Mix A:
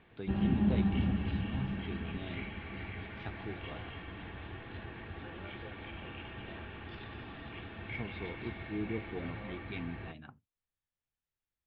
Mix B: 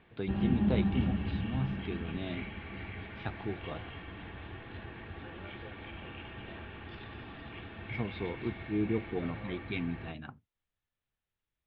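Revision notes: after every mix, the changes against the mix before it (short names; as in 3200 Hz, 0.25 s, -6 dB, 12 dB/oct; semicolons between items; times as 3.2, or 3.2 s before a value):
first voice +6.0 dB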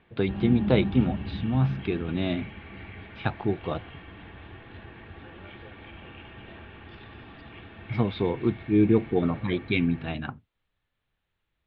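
first voice +11.0 dB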